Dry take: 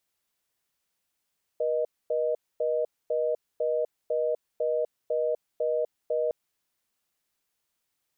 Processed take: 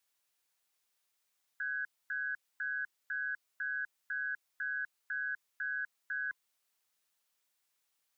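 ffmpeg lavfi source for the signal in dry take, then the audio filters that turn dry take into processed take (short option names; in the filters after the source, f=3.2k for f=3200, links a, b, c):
-f lavfi -i "aevalsrc='0.0473*(sin(2*PI*480*t)+sin(2*PI*620*t))*clip(min(mod(t,0.5),0.25-mod(t,0.5))/0.005,0,1)':d=4.71:s=44100"
-filter_complex "[0:a]afftfilt=real='real(if(lt(b,960),b+48*(1-2*mod(floor(b/48),2)),b),0)':imag='imag(if(lt(b,960),b+48*(1-2*mod(floor(b/48),2)),b),0)':win_size=2048:overlap=0.75,lowshelf=f=450:g=-11,acrossover=split=340|380|440[a][b][c][d];[d]alimiter=level_in=7dB:limit=-24dB:level=0:latency=1:release=11,volume=-7dB[e];[a][b][c][e]amix=inputs=4:normalize=0"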